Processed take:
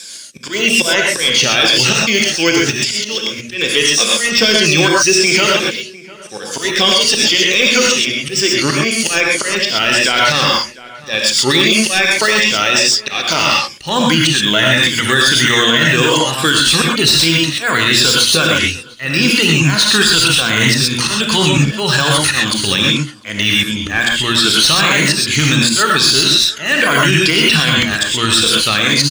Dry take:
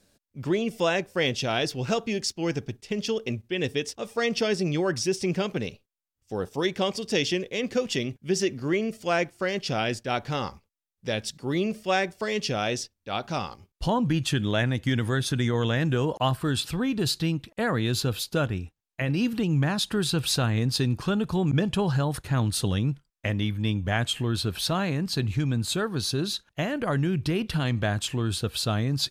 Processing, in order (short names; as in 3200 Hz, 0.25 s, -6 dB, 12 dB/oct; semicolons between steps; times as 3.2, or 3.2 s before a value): moving spectral ripple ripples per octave 1.8, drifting -2.5 Hz, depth 10 dB; weighting filter ITU-R 468; de-esser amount 90%; bell 750 Hz -8.5 dB 1.3 oct; notches 60/120/180/240/300/360/420/480 Hz; auto swell 0.281 s; outdoor echo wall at 120 m, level -24 dB; non-linear reverb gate 0.15 s rising, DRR -0.5 dB; maximiser +25.5 dB; gain -1 dB